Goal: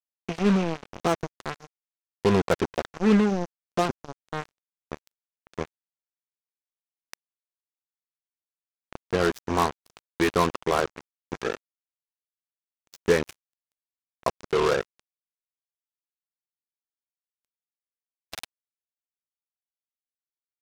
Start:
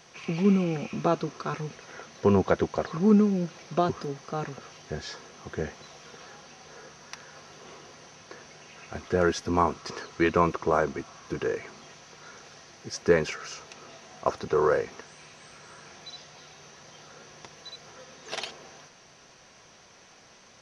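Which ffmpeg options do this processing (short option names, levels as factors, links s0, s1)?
-af "acrusher=bits=3:mix=0:aa=0.5"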